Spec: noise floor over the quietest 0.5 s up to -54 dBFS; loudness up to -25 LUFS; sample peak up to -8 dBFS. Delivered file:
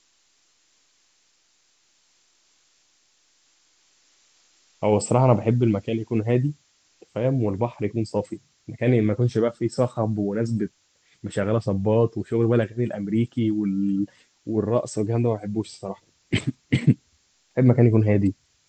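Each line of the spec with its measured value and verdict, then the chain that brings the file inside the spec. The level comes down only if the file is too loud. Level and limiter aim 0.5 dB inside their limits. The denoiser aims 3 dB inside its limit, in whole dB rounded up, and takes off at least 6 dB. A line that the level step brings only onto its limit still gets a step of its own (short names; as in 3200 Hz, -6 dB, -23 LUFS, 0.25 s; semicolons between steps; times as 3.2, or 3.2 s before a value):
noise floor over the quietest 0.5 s -65 dBFS: OK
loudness -23.5 LUFS: fail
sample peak -3.5 dBFS: fail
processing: gain -2 dB; limiter -8.5 dBFS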